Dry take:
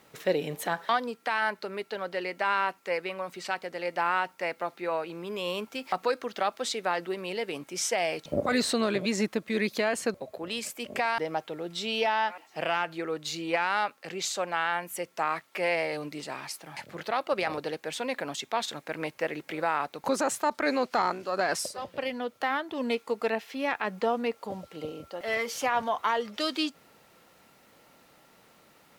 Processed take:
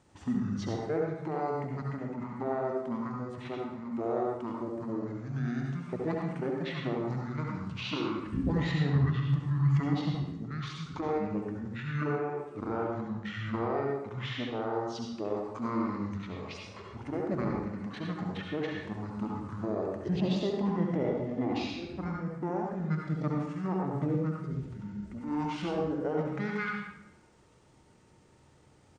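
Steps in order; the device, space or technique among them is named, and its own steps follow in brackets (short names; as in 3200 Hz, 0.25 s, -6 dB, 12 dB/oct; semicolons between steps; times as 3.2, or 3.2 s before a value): monster voice (pitch shift -7 st; formant shift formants -6 st; low shelf 180 Hz +9 dB; reverb RT60 0.90 s, pre-delay 63 ms, DRR -1 dB); gain -8 dB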